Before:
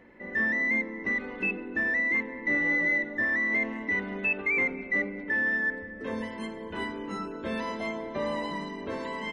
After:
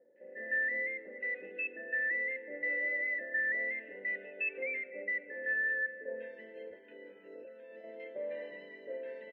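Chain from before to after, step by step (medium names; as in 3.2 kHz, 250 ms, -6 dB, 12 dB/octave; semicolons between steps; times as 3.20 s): 6.55–7.84 s: compressor with a negative ratio -39 dBFS, ratio -1; vowel filter e; tone controls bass -3 dB, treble -12 dB; bands offset in time lows, highs 160 ms, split 1.2 kHz; dynamic bell 2.1 kHz, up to +5 dB, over -52 dBFS, Q 0.93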